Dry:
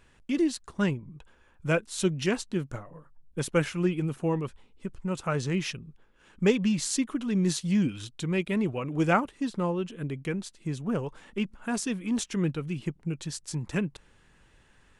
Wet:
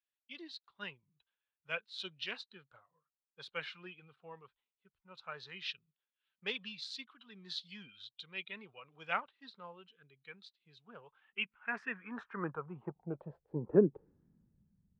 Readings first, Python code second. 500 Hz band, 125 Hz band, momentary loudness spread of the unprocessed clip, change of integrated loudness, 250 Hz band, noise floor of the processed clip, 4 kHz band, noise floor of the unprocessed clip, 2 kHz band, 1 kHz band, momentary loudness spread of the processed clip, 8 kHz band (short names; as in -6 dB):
-8.5 dB, -17.5 dB, 10 LU, -10.0 dB, -16.0 dB, under -85 dBFS, -5.0 dB, -61 dBFS, -6.5 dB, -11.0 dB, 17 LU, -29.0 dB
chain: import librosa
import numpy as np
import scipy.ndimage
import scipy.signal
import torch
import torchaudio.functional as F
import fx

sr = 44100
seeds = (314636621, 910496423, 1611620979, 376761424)

y = fx.air_absorb(x, sr, metres=380.0)
y = fx.filter_sweep_bandpass(y, sr, from_hz=3900.0, to_hz=200.0, start_s=10.93, end_s=14.65, q=2.9)
y = fx.noise_reduce_blind(y, sr, reduce_db=10)
y = fx.band_widen(y, sr, depth_pct=40)
y = F.gain(torch.from_numpy(y), 8.0).numpy()